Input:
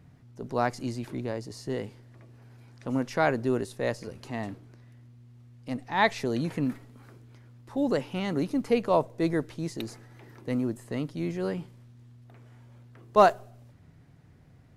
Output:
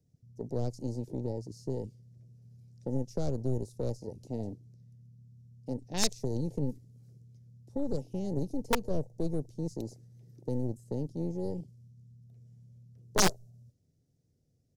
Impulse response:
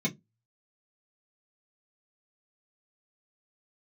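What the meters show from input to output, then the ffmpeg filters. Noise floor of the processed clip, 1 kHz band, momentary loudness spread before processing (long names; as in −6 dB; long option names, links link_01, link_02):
−73 dBFS, −12.5 dB, 15 LU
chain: -filter_complex "[0:a]aeval=exprs='0.501*(cos(1*acos(clip(val(0)/0.501,-1,1)))-cos(1*PI/2))+0.0224*(cos(3*acos(clip(val(0)/0.501,-1,1)))-cos(3*PI/2))+0.0708*(cos(8*acos(clip(val(0)/0.501,-1,1)))-cos(8*PI/2))':channel_layout=same,firequalizer=gain_entry='entry(320,0);entry(480,4);entry(1000,-20);entry(5600,11);entry(9100,7)':delay=0.05:min_phase=1,afwtdn=0.0178,acrossover=split=150|3000[link_01][link_02][link_03];[link_02]acompressor=threshold=-34dB:ratio=4[link_04];[link_01][link_04][link_03]amix=inputs=3:normalize=0,acrossover=split=1400[link_05][link_06];[link_05]aeval=exprs='(mod(10*val(0)+1,2)-1)/10':channel_layout=same[link_07];[link_07][link_06]amix=inputs=2:normalize=0"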